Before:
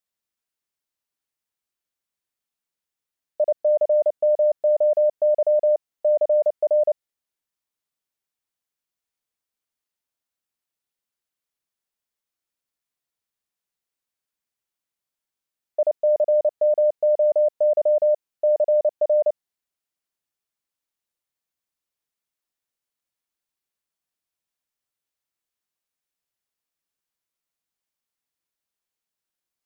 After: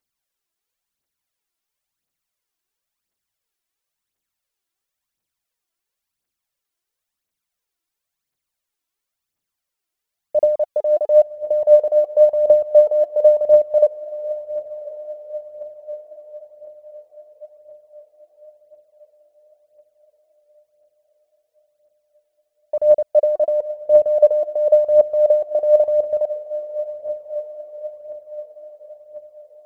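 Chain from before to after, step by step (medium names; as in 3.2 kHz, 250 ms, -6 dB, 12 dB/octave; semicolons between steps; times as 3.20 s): reverse the whole clip; echo that smears into a reverb 1038 ms, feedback 55%, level -14 dB; phaser 0.96 Hz, delay 3.1 ms, feedback 57%; trim +2.5 dB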